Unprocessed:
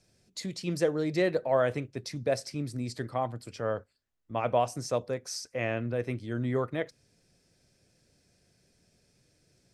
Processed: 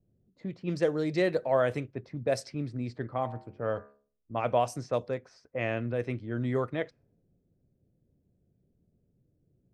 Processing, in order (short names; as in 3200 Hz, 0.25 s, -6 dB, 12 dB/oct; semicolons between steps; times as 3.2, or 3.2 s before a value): 3.16–4.38 de-hum 70.39 Hz, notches 39; low-pass opened by the level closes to 330 Hz, open at -25 dBFS